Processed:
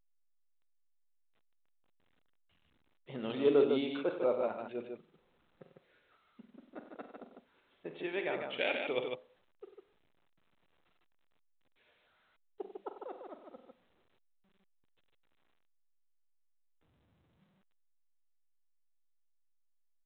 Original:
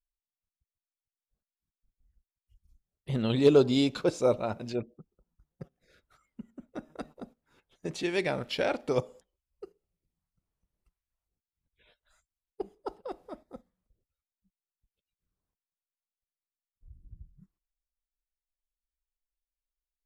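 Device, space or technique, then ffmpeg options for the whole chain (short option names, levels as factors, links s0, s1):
telephone: -filter_complex "[0:a]asettb=1/sr,asplit=3[s0][s1][s2];[s0]atrim=end=8.584[s3];[s1]atrim=start=8.58:end=9,asetpts=PTS-STARTPTS,afade=t=in:d=0.004:c=qsin,afade=t=out:st=0.416:d=0.004:c=qsin,highshelf=f=1900:t=q:w=1.5:g=11[s4];[s2]atrim=start=8.996[s5];[s3][s4]acrossfade=d=0.004:c1=hsin:c2=qsin[s6];[s6][s5]acrossfade=d=0.004:c1=qsin:c2=hsin,highpass=300,lowpass=3200,aecho=1:1:45|69|95|151:0.282|0.126|0.251|0.562,volume=0.501" -ar 8000 -c:a pcm_alaw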